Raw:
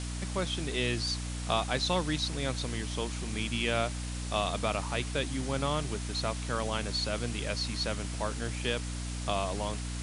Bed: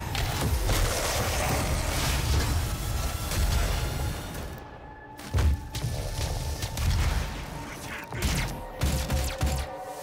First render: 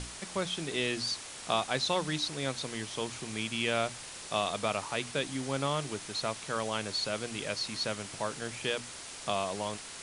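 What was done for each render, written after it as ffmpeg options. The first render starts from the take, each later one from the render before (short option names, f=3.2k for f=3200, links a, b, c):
-af "bandreject=f=60:t=h:w=6,bandreject=f=120:t=h:w=6,bandreject=f=180:t=h:w=6,bandreject=f=240:t=h:w=6,bandreject=f=300:t=h:w=6"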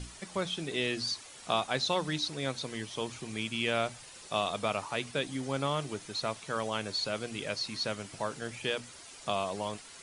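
-af "afftdn=nr=9:nf=-45"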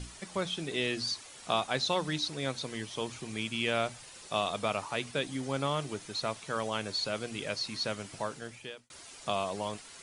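-filter_complex "[0:a]asplit=2[a][b];[a]atrim=end=8.9,asetpts=PTS-STARTPTS,afade=t=out:st=8.18:d=0.72[c];[b]atrim=start=8.9,asetpts=PTS-STARTPTS,afade=t=in:d=0.004:c=hsin[d];[c][d]concat=n=2:v=0:a=1"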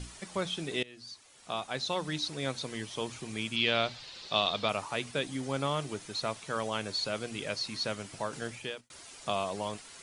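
-filter_complex "[0:a]asettb=1/sr,asplit=3[a][b][c];[a]atrim=end=3.564[d];[b]atrim=start=3.56:end=4.69,asetpts=PTS-STARTPTS,afade=t=in:d=0.004:c=qsin,afade=t=out:st=1.126:d=0.004:c=qsin,lowpass=f=4.2k:t=q:w=3.2[e];[c]atrim=start=4.686[f];[d][e]acrossfade=d=0.004:c1=hsin:c2=qsin[g];[g][f]acrossfade=d=0.004:c1=qsin:c2=hsin,asplit=4[h][i][j][k];[h]atrim=end=0.83,asetpts=PTS-STARTPTS,afade=t=out:st=0.826:d=0.004:c=hsin:silence=0.0749894[l];[i]atrim=start=0.83:end=8.332,asetpts=PTS-STARTPTS,afade=t=in:d=1.57:silence=0.0749894[m];[j]atrim=start=8.328:end=8.812,asetpts=PTS-STARTPTS,volume=5dB[n];[k]atrim=start=8.808[o];[l][m]concat=n=2:v=0:a=1[p];[p][n]acrossfade=d=0.004:c1=hsin:c2=hsin[q];[q][o]acrossfade=d=0.004:c1=hsin:c2=hsin"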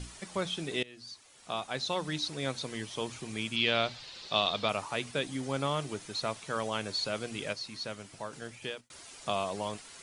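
-filter_complex "[0:a]asplit=3[a][b][c];[a]atrim=end=7.532[d];[b]atrim=start=7.528:end=8.622,asetpts=PTS-STARTPTS,volume=-5dB[e];[c]atrim=start=8.618[f];[d][e]acrossfade=d=0.004:c1=hsin:c2=hsin[g];[g][f]acrossfade=d=0.004:c1=hsin:c2=hsin"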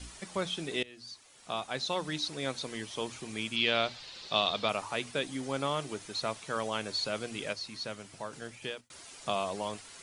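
-af "bandreject=f=50:t=h:w=6,bandreject=f=100:t=h:w=6,adynamicequalizer=threshold=0.00224:dfrequency=130:dqfactor=1.4:tfrequency=130:tqfactor=1.4:attack=5:release=100:ratio=0.375:range=2.5:mode=cutabove:tftype=bell"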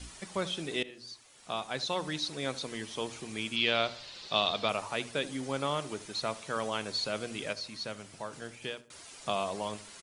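-filter_complex "[0:a]asplit=2[a][b];[b]adelay=76,lowpass=f=1.6k:p=1,volume=-16dB,asplit=2[c][d];[d]adelay=76,lowpass=f=1.6k:p=1,volume=0.45,asplit=2[e][f];[f]adelay=76,lowpass=f=1.6k:p=1,volume=0.45,asplit=2[g][h];[h]adelay=76,lowpass=f=1.6k:p=1,volume=0.45[i];[a][c][e][g][i]amix=inputs=5:normalize=0"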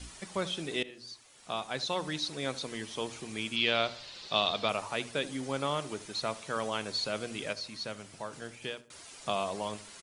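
-af anull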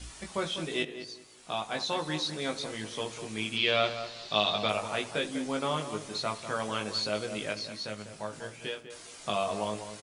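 -filter_complex "[0:a]asplit=2[a][b];[b]adelay=19,volume=-4dB[c];[a][c]amix=inputs=2:normalize=0,asplit=2[d][e];[e]adelay=198,lowpass=f=1.6k:p=1,volume=-9dB,asplit=2[f][g];[g]adelay=198,lowpass=f=1.6k:p=1,volume=0.28,asplit=2[h][i];[i]adelay=198,lowpass=f=1.6k:p=1,volume=0.28[j];[f][h][j]amix=inputs=3:normalize=0[k];[d][k]amix=inputs=2:normalize=0"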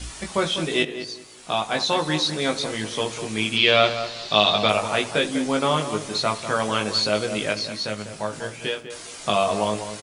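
-af "volume=9.5dB,alimiter=limit=-1dB:level=0:latency=1"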